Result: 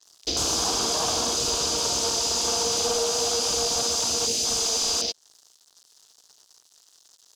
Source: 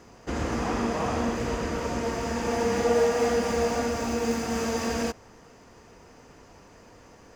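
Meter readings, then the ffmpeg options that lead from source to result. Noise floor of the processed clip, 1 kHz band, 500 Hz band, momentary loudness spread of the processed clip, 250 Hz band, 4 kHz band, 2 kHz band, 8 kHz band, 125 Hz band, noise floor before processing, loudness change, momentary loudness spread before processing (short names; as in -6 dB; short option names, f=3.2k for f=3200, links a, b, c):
-60 dBFS, -1.0 dB, -4.0 dB, 1 LU, -9.0 dB, +16.0 dB, -4.0 dB, +16.5 dB, -7.0 dB, -52 dBFS, +4.5 dB, 7 LU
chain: -filter_complex "[0:a]aeval=exprs='sgn(val(0))*max(abs(val(0))-0.00422,0)':c=same,aexciter=amount=8.9:drive=9.9:freq=3.6k,equalizer=f=220:w=5.1:g=-10,acontrast=46,asplit=2[a][b];[b]highpass=f=720:p=1,volume=15dB,asoftclip=type=tanh:threshold=0dB[c];[a][c]amix=inputs=2:normalize=0,lowpass=f=2k:p=1,volume=-6dB,bandreject=f=530:w=12,acompressor=threshold=-21dB:ratio=5,afwtdn=0.0398,adynamicequalizer=threshold=0.0178:dfrequency=7600:dqfactor=0.7:tfrequency=7600:tqfactor=0.7:attack=5:release=100:ratio=0.375:range=2.5:mode=cutabove:tftype=highshelf"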